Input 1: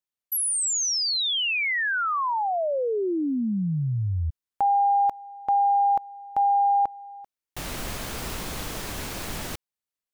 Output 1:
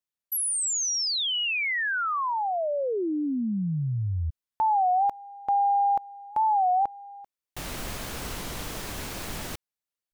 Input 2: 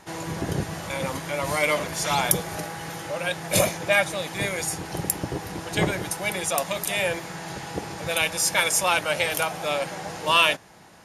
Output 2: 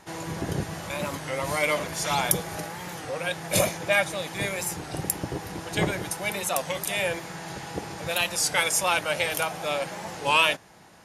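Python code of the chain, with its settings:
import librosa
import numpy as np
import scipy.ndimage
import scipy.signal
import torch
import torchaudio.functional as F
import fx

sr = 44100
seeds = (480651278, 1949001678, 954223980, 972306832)

y = fx.record_warp(x, sr, rpm=33.33, depth_cents=160.0)
y = F.gain(torch.from_numpy(y), -2.0).numpy()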